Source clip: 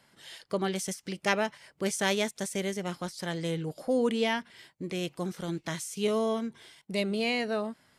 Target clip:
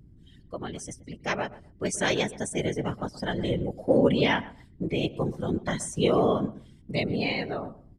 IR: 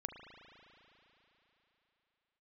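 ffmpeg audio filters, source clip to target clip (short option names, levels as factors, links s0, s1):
-filter_complex "[0:a]afftdn=nr=19:nf=-39,equalizer=f=7700:t=o:w=0.64:g=3.5,dynaudnorm=f=680:g=5:m=3.98,aeval=exprs='val(0)+0.00562*(sin(2*PI*60*n/s)+sin(2*PI*2*60*n/s)/2+sin(2*PI*3*60*n/s)/3+sin(2*PI*4*60*n/s)/4+sin(2*PI*5*60*n/s)/5)':c=same,afftfilt=real='hypot(re,im)*cos(2*PI*random(0))':imag='hypot(re,im)*sin(2*PI*random(1))':win_size=512:overlap=0.75,asplit=2[s0][s1];[s1]adelay=125,lowpass=f=1400:p=1,volume=0.158,asplit=2[s2][s3];[s3]adelay=125,lowpass=f=1400:p=1,volume=0.21[s4];[s2][s4]amix=inputs=2:normalize=0[s5];[s0][s5]amix=inputs=2:normalize=0"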